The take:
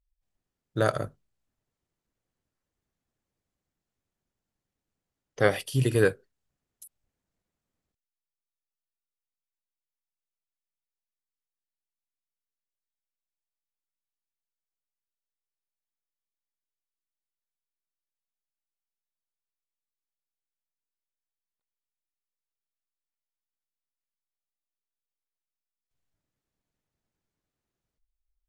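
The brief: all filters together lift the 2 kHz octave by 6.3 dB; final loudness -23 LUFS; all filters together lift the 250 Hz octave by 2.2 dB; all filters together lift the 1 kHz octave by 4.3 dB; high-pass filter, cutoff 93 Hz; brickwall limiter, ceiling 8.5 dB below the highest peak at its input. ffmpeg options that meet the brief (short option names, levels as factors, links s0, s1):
-af "highpass=93,equalizer=f=250:t=o:g=3,equalizer=f=1000:t=o:g=3.5,equalizer=f=2000:t=o:g=7,volume=1.68,alimiter=limit=0.398:level=0:latency=1"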